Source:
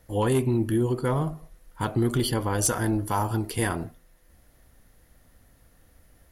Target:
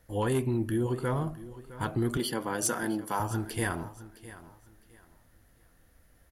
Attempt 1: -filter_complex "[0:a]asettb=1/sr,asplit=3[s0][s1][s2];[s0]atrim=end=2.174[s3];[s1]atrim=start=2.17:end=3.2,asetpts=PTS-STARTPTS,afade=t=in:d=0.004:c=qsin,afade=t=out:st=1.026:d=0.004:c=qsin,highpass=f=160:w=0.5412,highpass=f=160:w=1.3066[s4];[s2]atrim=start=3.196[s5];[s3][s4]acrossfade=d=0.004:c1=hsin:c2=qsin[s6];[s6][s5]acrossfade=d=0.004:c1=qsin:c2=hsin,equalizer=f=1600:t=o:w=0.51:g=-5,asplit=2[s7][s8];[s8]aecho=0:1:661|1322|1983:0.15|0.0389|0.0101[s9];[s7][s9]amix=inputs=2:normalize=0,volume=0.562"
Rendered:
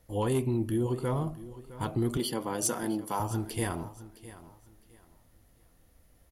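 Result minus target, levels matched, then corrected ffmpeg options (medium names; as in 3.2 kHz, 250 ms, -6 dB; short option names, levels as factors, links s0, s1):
2 kHz band -6.5 dB
-filter_complex "[0:a]asettb=1/sr,asplit=3[s0][s1][s2];[s0]atrim=end=2.174[s3];[s1]atrim=start=2.17:end=3.2,asetpts=PTS-STARTPTS,afade=t=in:d=0.004:c=qsin,afade=t=out:st=1.026:d=0.004:c=qsin,highpass=f=160:w=0.5412,highpass=f=160:w=1.3066[s4];[s2]atrim=start=3.196[s5];[s3][s4]acrossfade=d=0.004:c1=hsin:c2=qsin[s6];[s6][s5]acrossfade=d=0.004:c1=qsin:c2=hsin,equalizer=f=1600:t=o:w=0.51:g=4,asplit=2[s7][s8];[s8]aecho=0:1:661|1322|1983:0.15|0.0389|0.0101[s9];[s7][s9]amix=inputs=2:normalize=0,volume=0.562"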